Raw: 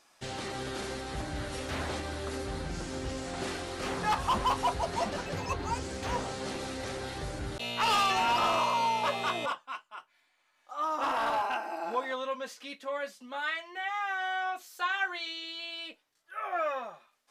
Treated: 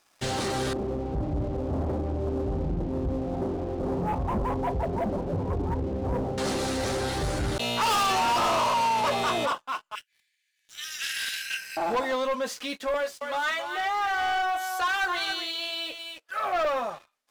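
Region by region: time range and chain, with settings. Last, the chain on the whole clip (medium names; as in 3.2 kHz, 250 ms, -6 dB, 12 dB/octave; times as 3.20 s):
0.73–6.38 s: one-bit delta coder 64 kbps, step -40.5 dBFS + Gaussian low-pass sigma 12 samples
9.95–11.77 s: steep high-pass 1.6 kHz 96 dB/octave + treble shelf 2.9 kHz +8 dB
12.94–16.65 s: high-pass 360 Hz 24 dB/octave + delay 272 ms -9.5 dB
whole clip: dynamic bell 2.2 kHz, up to -6 dB, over -46 dBFS, Q 0.89; waveshaping leveller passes 3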